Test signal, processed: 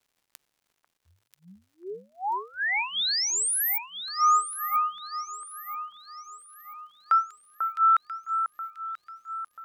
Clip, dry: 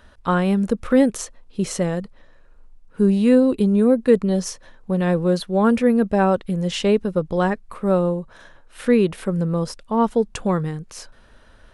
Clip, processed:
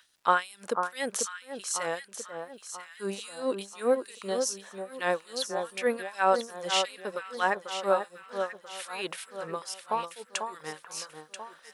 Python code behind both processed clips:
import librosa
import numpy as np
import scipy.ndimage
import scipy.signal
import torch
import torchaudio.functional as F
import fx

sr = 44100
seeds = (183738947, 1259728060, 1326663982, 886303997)

y = fx.filter_lfo_highpass(x, sr, shape='sine', hz=2.5, low_hz=620.0, high_hz=6200.0, q=0.79)
y = fx.echo_alternate(y, sr, ms=493, hz=1500.0, feedback_pct=64, wet_db=-6.0)
y = fx.dmg_crackle(y, sr, seeds[0], per_s=250.0, level_db=-58.0)